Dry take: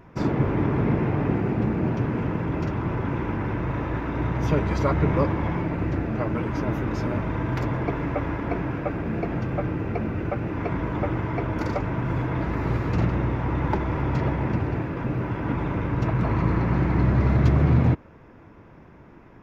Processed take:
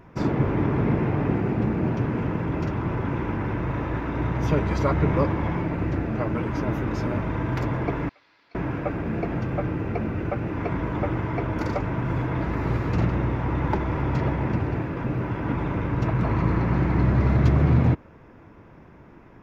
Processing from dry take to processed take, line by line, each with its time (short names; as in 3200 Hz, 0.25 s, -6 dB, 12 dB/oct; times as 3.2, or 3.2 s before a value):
8.09–8.55 band-pass 4400 Hz, Q 6.7